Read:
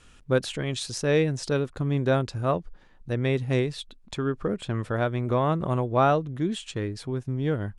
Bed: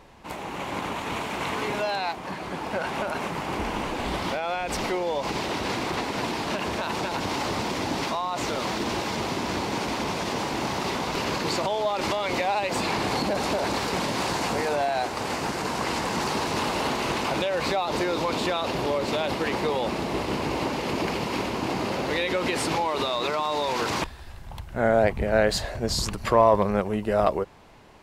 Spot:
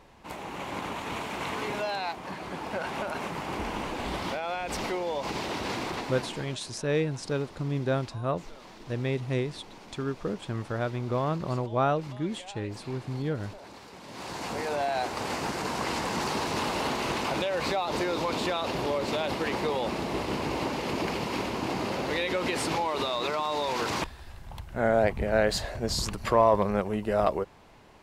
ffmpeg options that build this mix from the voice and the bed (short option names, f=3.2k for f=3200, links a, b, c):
-filter_complex "[0:a]adelay=5800,volume=-4.5dB[a];[1:a]volume=13.5dB,afade=t=out:st=5.82:d=0.76:silence=0.149624,afade=t=in:st=14.02:d=0.9:silence=0.133352[b];[a][b]amix=inputs=2:normalize=0"